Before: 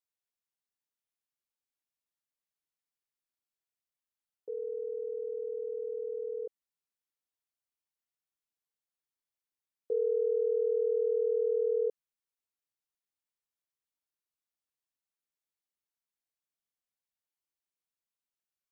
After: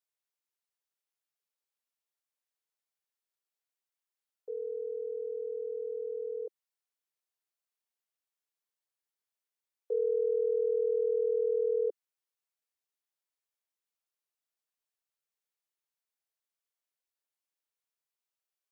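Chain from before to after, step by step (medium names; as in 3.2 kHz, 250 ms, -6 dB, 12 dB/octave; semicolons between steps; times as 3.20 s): steep high-pass 360 Hz 48 dB/octave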